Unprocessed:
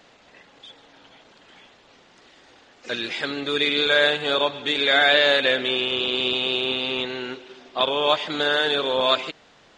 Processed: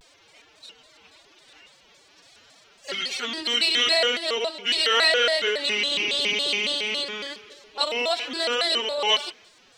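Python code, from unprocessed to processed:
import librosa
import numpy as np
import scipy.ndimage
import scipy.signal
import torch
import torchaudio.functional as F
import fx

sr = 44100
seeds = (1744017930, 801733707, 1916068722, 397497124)

y = fx.pitch_keep_formants(x, sr, semitones=11.5)
y = librosa.effects.preemphasis(y, coef=0.8, zi=[0.0])
y = y + 10.0 ** (-22.5 / 20.0) * np.pad(y, (int(174 * sr / 1000.0), 0))[:len(y)]
y = fx.vibrato_shape(y, sr, shape='square', rate_hz=3.6, depth_cents=250.0)
y = y * 10.0 ** (8.0 / 20.0)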